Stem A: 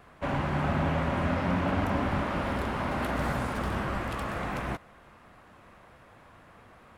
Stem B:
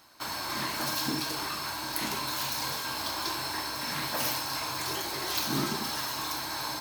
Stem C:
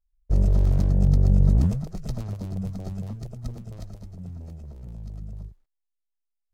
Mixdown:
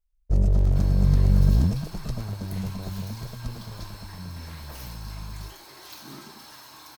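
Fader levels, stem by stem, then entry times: muted, −13.0 dB, −0.5 dB; muted, 0.55 s, 0.00 s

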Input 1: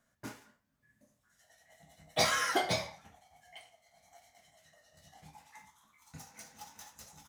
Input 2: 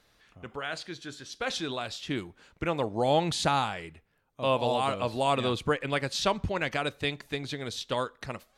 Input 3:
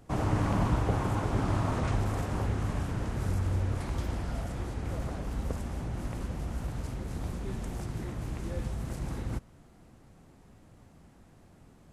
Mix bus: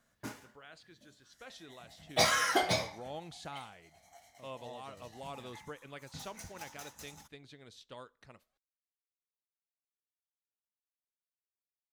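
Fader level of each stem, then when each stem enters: +1.5 dB, −19.0 dB, muted; 0.00 s, 0.00 s, muted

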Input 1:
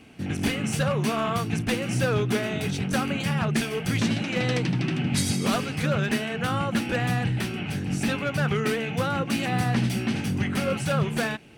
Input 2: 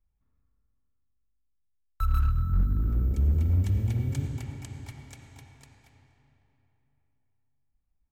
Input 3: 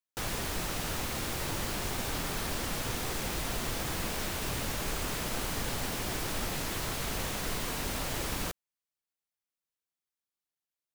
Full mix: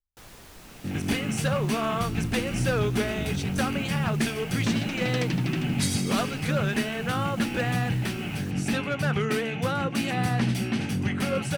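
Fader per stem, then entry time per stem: −1.0, −15.0, −13.5 decibels; 0.65, 0.00, 0.00 seconds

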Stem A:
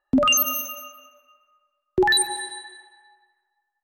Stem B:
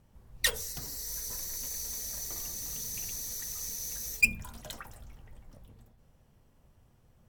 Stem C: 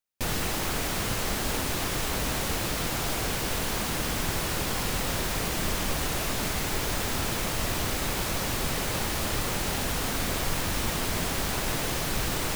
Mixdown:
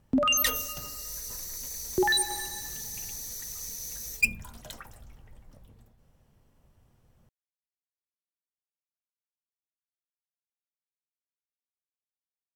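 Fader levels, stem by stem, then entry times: −6.0 dB, −0.5 dB, muted; 0.00 s, 0.00 s, muted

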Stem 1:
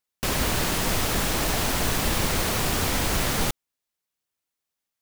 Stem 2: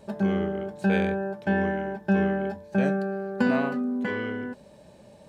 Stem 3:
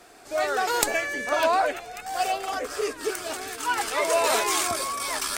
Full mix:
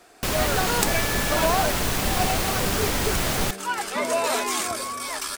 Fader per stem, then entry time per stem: 0.0, −12.5, −1.5 decibels; 0.00, 0.55, 0.00 seconds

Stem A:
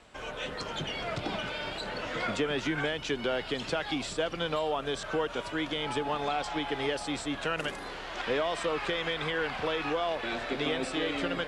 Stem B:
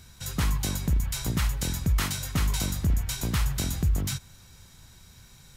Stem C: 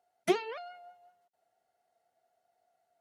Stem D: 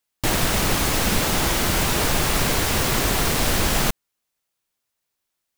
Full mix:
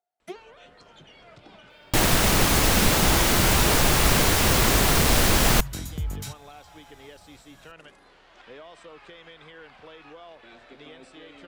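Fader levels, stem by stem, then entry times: −15.5, −5.5, −11.5, +1.0 decibels; 0.20, 2.15, 0.00, 1.70 seconds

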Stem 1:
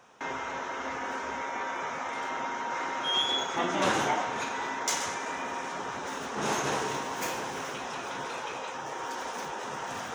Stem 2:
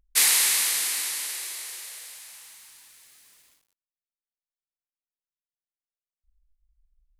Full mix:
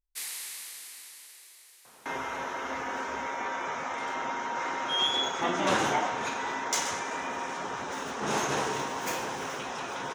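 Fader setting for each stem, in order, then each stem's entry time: +0.5, −18.0 decibels; 1.85, 0.00 seconds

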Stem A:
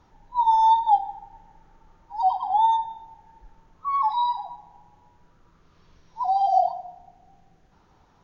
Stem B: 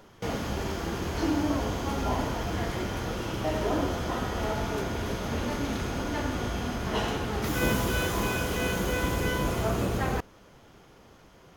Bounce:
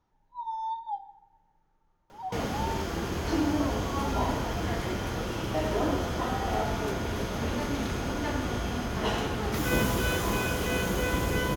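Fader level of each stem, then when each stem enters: −16.0, 0.0 decibels; 0.00, 2.10 seconds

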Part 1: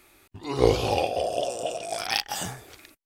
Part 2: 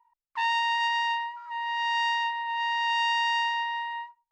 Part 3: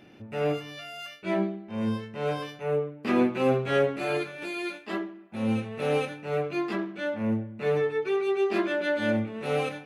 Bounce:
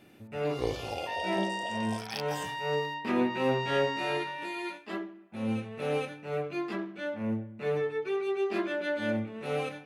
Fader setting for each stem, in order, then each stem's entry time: −12.0, −9.5, −4.5 decibels; 0.00, 0.70, 0.00 seconds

